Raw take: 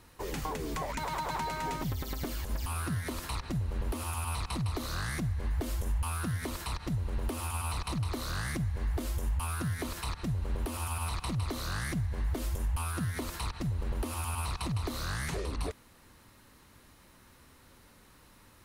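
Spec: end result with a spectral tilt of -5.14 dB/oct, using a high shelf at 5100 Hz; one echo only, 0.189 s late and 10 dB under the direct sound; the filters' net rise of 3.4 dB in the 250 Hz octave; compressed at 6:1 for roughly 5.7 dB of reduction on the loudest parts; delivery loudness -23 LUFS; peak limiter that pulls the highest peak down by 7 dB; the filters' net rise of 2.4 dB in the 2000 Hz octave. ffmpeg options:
-af "equalizer=f=250:t=o:g=4.5,equalizer=f=2k:t=o:g=3.5,highshelf=f=5.1k:g=-3,acompressor=threshold=-33dB:ratio=6,alimiter=level_in=7.5dB:limit=-24dB:level=0:latency=1,volume=-7.5dB,aecho=1:1:189:0.316,volume=17dB"

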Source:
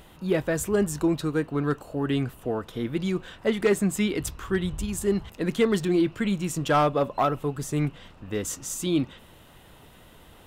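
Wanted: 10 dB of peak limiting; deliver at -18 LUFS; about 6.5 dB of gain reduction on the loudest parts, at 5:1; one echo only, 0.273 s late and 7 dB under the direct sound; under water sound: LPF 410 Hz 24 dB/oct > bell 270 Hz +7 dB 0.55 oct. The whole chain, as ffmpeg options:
-af "acompressor=threshold=-24dB:ratio=5,alimiter=level_in=1.5dB:limit=-24dB:level=0:latency=1,volume=-1.5dB,lowpass=f=410:w=0.5412,lowpass=f=410:w=1.3066,equalizer=f=270:t=o:w=0.55:g=7,aecho=1:1:273:0.447,volume=15dB"

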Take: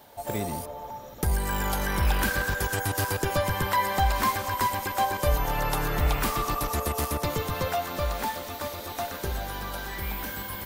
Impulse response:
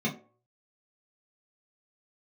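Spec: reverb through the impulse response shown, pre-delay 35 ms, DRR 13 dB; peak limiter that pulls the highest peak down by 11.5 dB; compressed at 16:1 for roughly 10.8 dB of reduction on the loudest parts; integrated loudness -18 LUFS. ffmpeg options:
-filter_complex "[0:a]acompressor=threshold=-29dB:ratio=16,alimiter=level_in=2.5dB:limit=-24dB:level=0:latency=1,volume=-2.5dB,asplit=2[a][b];[1:a]atrim=start_sample=2205,adelay=35[c];[b][c]afir=irnorm=-1:irlink=0,volume=-21dB[d];[a][d]amix=inputs=2:normalize=0,volume=17.5dB"

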